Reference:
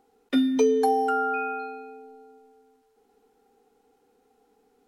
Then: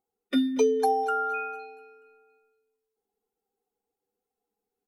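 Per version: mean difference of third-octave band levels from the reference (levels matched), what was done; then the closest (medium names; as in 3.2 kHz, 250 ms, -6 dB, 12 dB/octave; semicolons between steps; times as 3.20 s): 3.0 dB: expander on every frequency bin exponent 1.5; bass shelf 110 Hz -9 dB; feedback delay 234 ms, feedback 50%, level -19 dB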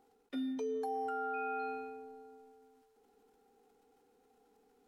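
4.5 dB: dynamic bell 620 Hz, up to +5 dB, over -34 dBFS, Q 0.82; reverse; compression 16:1, threshold -29 dBFS, peak gain reduction 17 dB; reverse; transient shaper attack 0 dB, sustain +8 dB; trim -5.5 dB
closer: first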